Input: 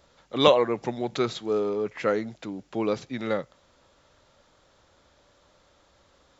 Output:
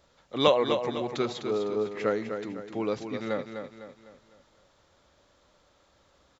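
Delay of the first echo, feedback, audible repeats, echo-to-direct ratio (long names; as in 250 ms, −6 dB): 252 ms, 43%, 4, −6.5 dB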